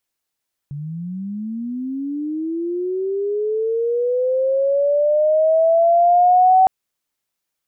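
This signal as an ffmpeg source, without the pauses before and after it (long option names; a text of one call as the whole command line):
ffmpeg -f lavfi -i "aevalsrc='pow(10,(-26+17.5*t/5.96)/20)*sin(2*PI*(140*t+620*t*t/(2*5.96)))':duration=5.96:sample_rate=44100" out.wav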